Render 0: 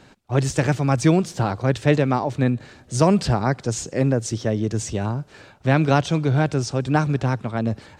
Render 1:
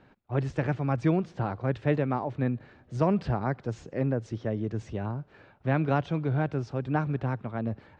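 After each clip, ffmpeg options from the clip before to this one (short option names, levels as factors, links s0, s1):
-af "lowpass=2300,volume=0.398"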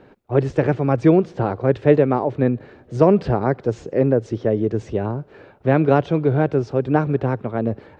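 -af "equalizer=f=430:t=o:w=1.1:g=9.5,volume=2"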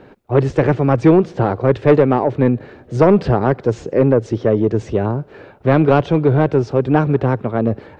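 -af "asoftclip=type=tanh:threshold=0.376,volume=1.88"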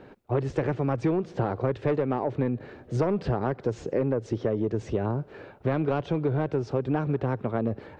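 -af "acompressor=threshold=0.141:ratio=6,volume=0.531"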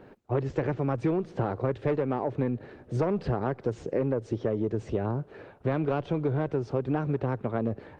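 -af "volume=0.841" -ar 48000 -c:a libopus -b:a 24k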